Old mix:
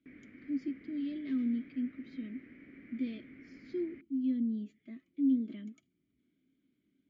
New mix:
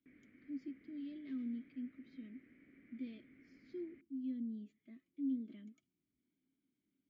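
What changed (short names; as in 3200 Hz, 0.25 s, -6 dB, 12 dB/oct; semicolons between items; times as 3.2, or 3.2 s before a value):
speech -9.5 dB; background -10.5 dB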